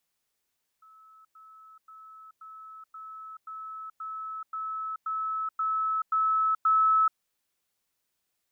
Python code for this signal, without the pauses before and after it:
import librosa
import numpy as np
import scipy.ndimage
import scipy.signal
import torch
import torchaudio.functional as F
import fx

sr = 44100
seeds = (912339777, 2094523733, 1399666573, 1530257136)

y = fx.level_ladder(sr, hz=1300.0, from_db=-52.0, step_db=3.0, steps=12, dwell_s=0.43, gap_s=0.1)